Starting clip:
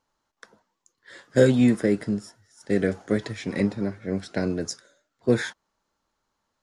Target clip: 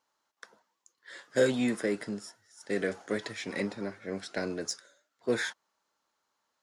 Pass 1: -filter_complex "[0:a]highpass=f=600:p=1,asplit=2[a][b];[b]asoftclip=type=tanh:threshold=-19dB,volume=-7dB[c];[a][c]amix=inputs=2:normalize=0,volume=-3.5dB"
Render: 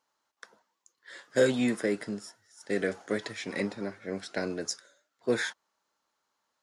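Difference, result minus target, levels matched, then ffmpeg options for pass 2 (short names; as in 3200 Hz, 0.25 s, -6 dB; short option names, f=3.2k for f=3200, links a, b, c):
soft clip: distortion -9 dB
-filter_complex "[0:a]highpass=f=600:p=1,asplit=2[a][b];[b]asoftclip=type=tanh:threshold=-31dB,volume=-7dB[c];[a][c]amix=inputs=2:normalize=0,volume=-3.5dB"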